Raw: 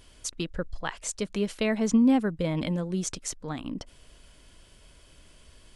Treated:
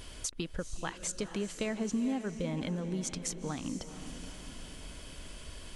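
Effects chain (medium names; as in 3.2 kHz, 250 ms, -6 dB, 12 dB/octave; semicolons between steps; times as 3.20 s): compression 3:1, threshold -45 dBFS, peak gain reduction 19.5 dB; on a send: echo that smears into a reverb 465 ms, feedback 50%, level -10.5 dB; on the sum: trim +7.5 dB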